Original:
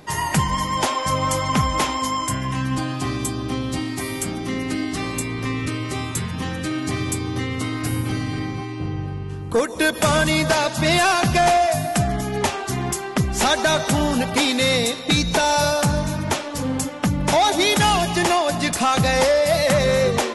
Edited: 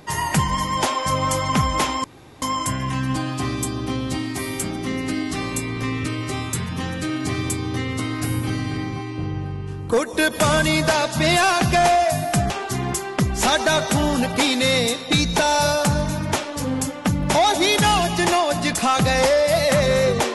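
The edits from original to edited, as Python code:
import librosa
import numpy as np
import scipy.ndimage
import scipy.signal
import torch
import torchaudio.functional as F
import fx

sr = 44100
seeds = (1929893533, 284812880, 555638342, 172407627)

y = fx.edit(x, sr, fx.insert_room_tone(at_s=2.04, length_s=0.38),
    fx.cut(start_s=12.12, length_s=0.36), tone=tone)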